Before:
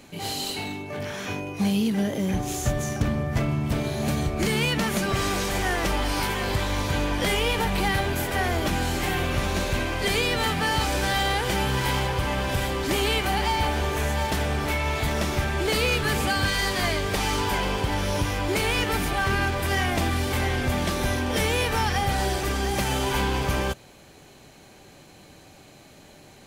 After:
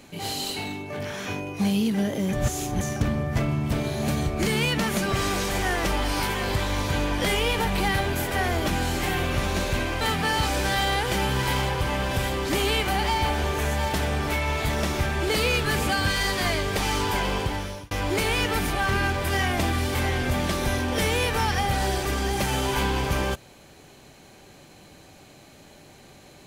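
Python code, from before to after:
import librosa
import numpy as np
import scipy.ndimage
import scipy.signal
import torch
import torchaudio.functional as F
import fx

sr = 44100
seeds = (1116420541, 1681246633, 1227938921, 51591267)

y = fx.edit(x, sr, fx.reverse_span(start_s=2.33, length_s=0.48),
    fx.cut(start_s=10.01, length_s=0.38),
    fx.fade_out_span(start_s=17.78, length_s=0.51), tone=tone)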